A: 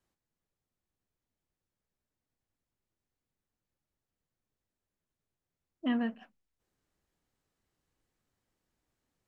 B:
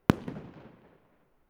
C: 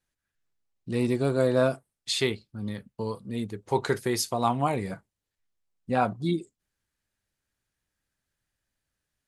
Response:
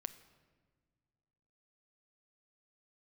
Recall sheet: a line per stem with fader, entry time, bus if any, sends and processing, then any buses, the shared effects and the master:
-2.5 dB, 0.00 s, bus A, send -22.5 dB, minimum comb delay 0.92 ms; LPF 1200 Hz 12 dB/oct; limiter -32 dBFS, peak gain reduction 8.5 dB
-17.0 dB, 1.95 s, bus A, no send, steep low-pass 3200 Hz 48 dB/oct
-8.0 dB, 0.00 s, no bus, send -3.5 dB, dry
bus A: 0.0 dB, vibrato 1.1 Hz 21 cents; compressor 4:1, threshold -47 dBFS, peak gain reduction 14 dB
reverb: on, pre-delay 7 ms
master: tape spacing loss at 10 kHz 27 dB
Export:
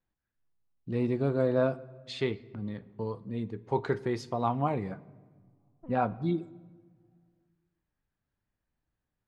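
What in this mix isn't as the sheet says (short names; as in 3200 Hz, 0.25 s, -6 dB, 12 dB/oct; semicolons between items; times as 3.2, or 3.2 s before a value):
stem B: entry 1.95 s -> 2.45 s; reverb return +7.0 dB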